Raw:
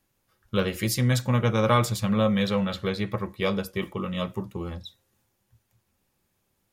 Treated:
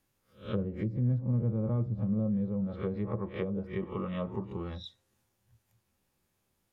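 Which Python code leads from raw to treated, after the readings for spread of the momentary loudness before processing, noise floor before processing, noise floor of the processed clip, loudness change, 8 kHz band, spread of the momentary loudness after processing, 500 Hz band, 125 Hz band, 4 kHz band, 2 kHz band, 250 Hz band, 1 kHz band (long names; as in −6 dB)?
11 LU, −74 dBFS, −78 dBFS, −7.0 dB, below −35 dB, 9 LU, −9.5 dB, −4.5 dB, −18.5 dB, −18.0 dB, −5.5 dB, −16.0 dB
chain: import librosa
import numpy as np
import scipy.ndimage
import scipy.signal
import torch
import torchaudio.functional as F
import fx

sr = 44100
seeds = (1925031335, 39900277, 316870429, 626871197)

y = fx.spec_swells(x, sr, rise_s=0.35)
y = fx.env_lowpass_down(y, sr, base_hz=310.0, full_db=-21.0)
y = y * librosa.db_to_amplitude(-5.0)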